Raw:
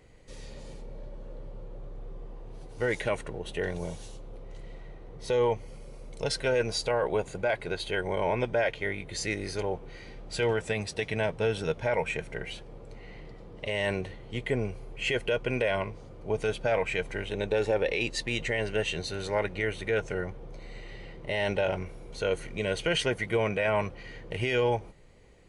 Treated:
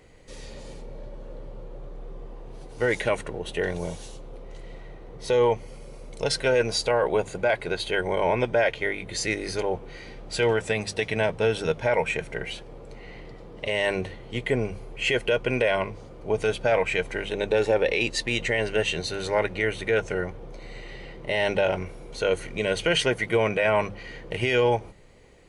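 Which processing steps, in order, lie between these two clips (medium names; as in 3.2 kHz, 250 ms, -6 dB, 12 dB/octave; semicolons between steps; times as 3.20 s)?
bass shelf 160 Hz -3 dB; hum notches 50/100/150/200 Hz; trim +5 dB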